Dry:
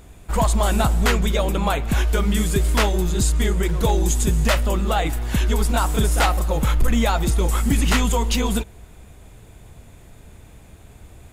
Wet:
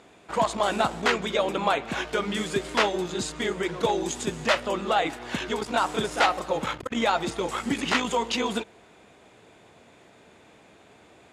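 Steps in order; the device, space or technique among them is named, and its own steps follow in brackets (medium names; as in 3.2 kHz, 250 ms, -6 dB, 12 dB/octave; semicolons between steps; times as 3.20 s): public-address speaker with an overloaded transformer (transformer saturation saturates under 52 Hz; band-pass 300–5000 Hz)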